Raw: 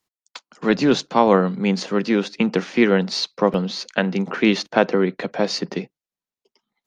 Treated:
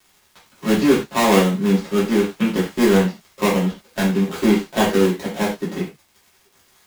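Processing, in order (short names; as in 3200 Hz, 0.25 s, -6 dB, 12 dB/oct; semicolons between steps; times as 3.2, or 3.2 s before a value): switching dead time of 0.24 ms; crackle 130/s -36 dBFS; non-linear reverb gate 0.13 s falling, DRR -8 dB; gain -7 dB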